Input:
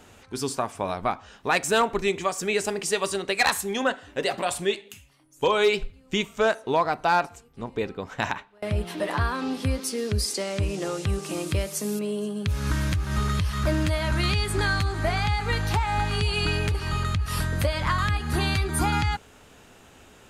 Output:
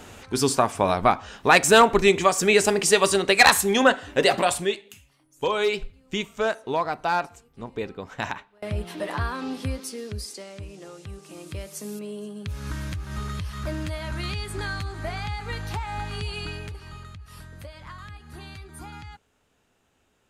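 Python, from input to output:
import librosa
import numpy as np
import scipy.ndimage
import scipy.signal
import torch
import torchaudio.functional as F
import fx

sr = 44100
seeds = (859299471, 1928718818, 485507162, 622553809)

y = fx.gain(x, sr, db=fx.line((4.38, 7.0), (4.8, -2.5), (9.59, -2.5), (10.67, -13.0), (11.25, -13.0), (11.79, -6.5), (16.29, -6.5), (17.17, -17.0)))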